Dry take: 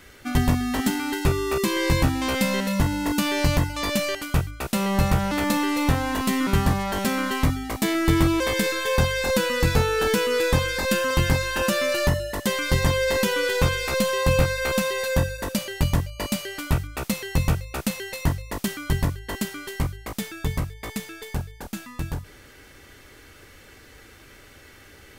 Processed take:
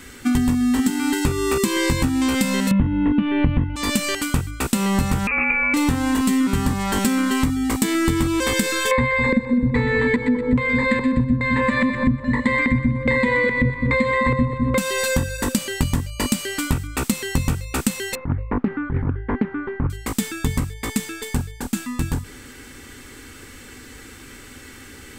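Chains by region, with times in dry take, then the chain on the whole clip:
2.71–3.76 s: steep low-pass 3.2 kHz 48 dB/octave + bass shelf 460 Hz +11.5 dB
5.27–5.74 s: high-order bell 760 Hz -8.5 dB 1.2 oct + frequency inversion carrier 2.6 kHz
8.91–14.78 s: rippled EQ curve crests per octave 1, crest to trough 18 dB + LFO low-pass square 1.2 Hz 220–2100 Hz + two-band feedback delay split 1.3 kHz, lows 206 ms, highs 124 ms, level -8.5 dB
18.15–19.90 s: low-pass 1.5 kHz 24 dB/octave + compressor with a negative ratio -24 dBFS, ratio -0.5 + loudspeaker Doppler distortion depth 0.52 ms
whole clip: graphic EQ with 31 bands 250 Hz +10 dB, 630 Hz -10 dB, 8 kHz +9 dB; compression, threshold -23 dBFS; trim +6.5 dB

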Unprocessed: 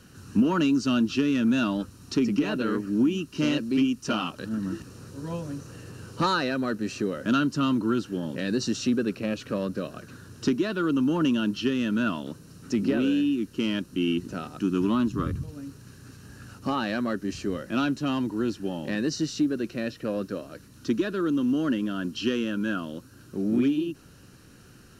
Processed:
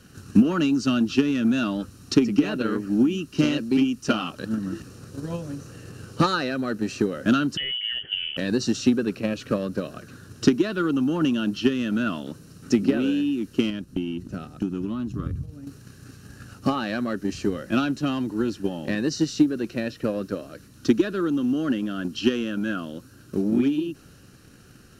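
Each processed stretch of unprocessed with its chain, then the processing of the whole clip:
7.57–8.37 s: compression 12:1, threshold -25 dBFS + frequency inversion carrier 3.2 kHz
13.70–15.67 s: gate -37 dBFS, range -7 dB + bass shelf 200 Hz +11 dB + compression 2:1, threshold -35 dBFS
whole clip: band-stop 960 Hz, Q 9.1; transient shaper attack +8 dB, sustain +2 dB

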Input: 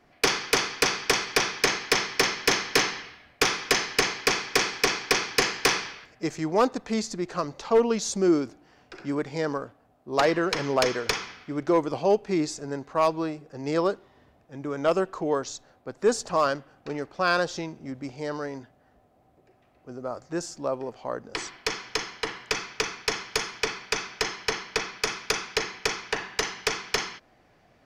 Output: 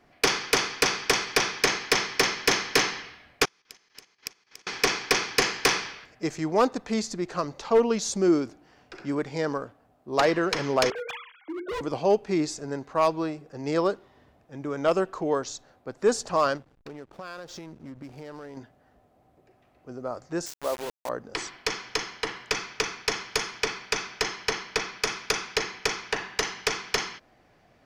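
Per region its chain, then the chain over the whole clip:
3.45–4.67 s: treble shelf 4.1 kHz +6.5 dB + inverted gate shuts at -23 dBFS, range -32 dB + level held to a coarse grid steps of 11 dB
10.90–11.81 s: formants replaced by sine waves + hum notches 60/120/180/240/300/360/420/480 Hz + overload inside the chain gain 30 dB
16.57–18.57 s: compression 5:1, threshold -37 dBFS + hysteresis with a dead band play -46 dBFS
20.46–21.09 s: high-pass 340 Hz + word length cut 6-bit, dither none
whole clip: none

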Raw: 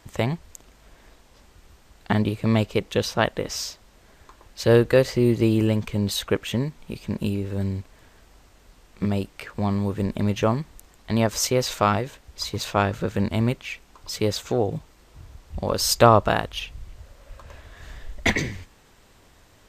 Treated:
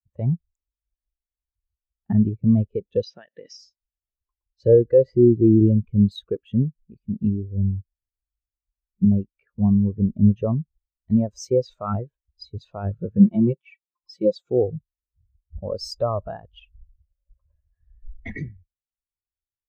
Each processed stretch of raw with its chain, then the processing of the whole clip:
3.03–3.57 s: high-pass 140 Hz + high-order bell 3.3 kHz +9 dB 2.4 oct + compression 16:1, threshold -23 dBFS
13.19–14.50 s: high-pass 150 Hz 6 dB/octave + comb 5.7 ms, depth 69%
whole clip: band-stop 2.1 kHz, Q 30; peak limiter -13 dBFS; spectral contrast expander 2.5:1; trim +9 dB

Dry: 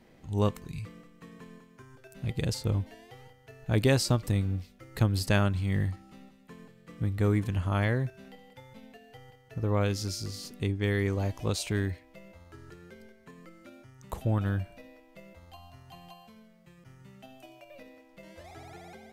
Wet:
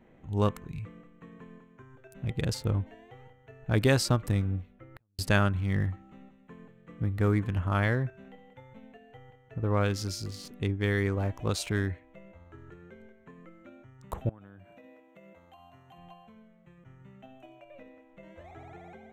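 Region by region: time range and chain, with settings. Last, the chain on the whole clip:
4.61–5.19 s: peaking EQ 7.4 kHz -12 dB 1.5 oct + compression 20:1, threshold -33 dBFS + inverted gate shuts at -33 dBFS, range -37 dB
14.29–15.98 s: high-pass 160 Hz + treble shelf 9.1 kHz +10.5 dB + compression, threshold -47 dBFS
whole clip: local Wiener filter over 9 samples; dynamic bell 1.4 kHz, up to +5 dB, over -49 dBFS, Q 1.7

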